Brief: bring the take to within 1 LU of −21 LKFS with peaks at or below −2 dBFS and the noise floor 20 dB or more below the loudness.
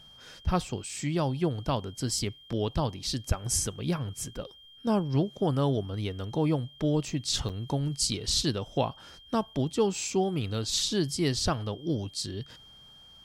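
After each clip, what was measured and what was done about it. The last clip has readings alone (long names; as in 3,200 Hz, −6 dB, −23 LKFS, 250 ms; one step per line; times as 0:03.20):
number of dropouts 1; longest dropout 7.6 ms; interfering tone 3,200 Hz; level of the tone −51 dBFS; integrated loudness −30.0 LKFS; sample peak −12.5 dBFS; target loudness −21.0 LKFS
→ repair the gap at 0:07.49, 7.6 ms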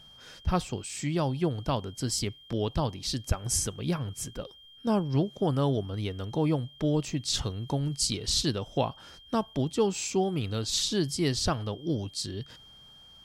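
number of dropouts 0; interfering tone 3,200 Hz; level of the tone −51 dBFS
→ notch filter 3,200 Hz, Q 30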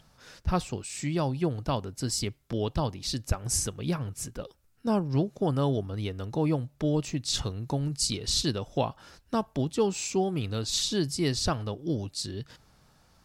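interfering tone none found; integrated loudness −30.0 LKFS; sample peak −12.5 dBFS; target loudness −21.0 LKFS
→ level +9 dB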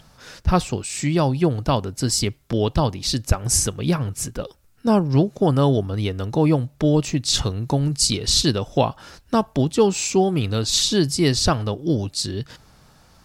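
integrated loudness −21.0 LKFS; sample peak −3.5 dBFS; background noise floor −54 dBFS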